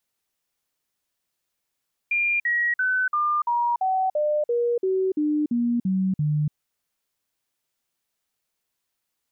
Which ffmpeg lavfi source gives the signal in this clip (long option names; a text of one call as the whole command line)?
ffmpeg -f lavfi -i "aevalsrc='0.106*clip(min(mod(t,0.34),0.29-mod(t,0.34))/0.005,0,1)*sin(2*PI*2400*pow(2,-floor(t/0.34)/3)*mod(t,0.34))':duration=4.42:sample_rate=44100" out.wav